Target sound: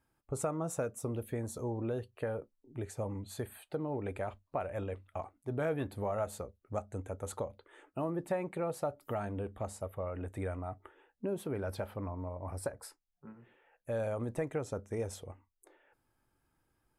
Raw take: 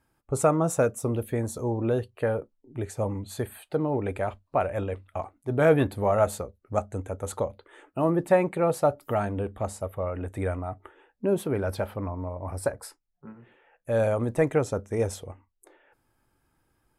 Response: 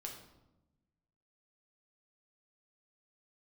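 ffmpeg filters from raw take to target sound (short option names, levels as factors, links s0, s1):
-af "acompressor=threshold=0.0447:ratio=2.5,volume=0.473"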